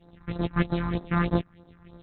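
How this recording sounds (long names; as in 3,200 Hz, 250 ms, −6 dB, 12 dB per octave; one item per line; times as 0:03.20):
a buzz of ramps at a fixed pitch in blocks of 256 samples
tremolo saw up 1.4 Hz, depth 50%
phaser sweep stages 4, 3.2 Hz, lowest notch 480–2,700 Hz
Opus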